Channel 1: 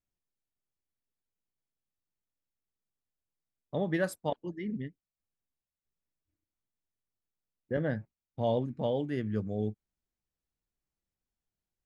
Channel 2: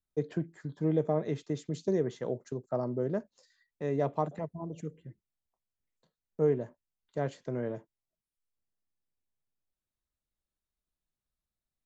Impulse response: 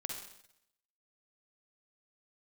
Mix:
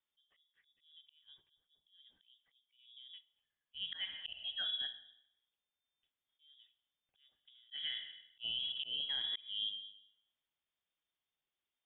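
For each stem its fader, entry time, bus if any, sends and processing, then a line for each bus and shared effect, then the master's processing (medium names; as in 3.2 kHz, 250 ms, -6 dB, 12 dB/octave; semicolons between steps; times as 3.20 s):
-0.5 dB, 0.00 s, send -4.5 dB, high-pass 250 Hz 24 dB/octave
-13.5 dB, 0.00 s, send -16.5 dB, compression 8:1, threshold -38 dBFS, peak gain reduction 16 dB; auto duck -21 dB, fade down 0.45 s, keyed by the first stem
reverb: on, RT60 0.75 s, pre-delay 44 ms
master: slow attack 392 ms; frequency inversion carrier 3.6 kHz; peak limiter -30 dBFS, peak gain reduction 7.5 dB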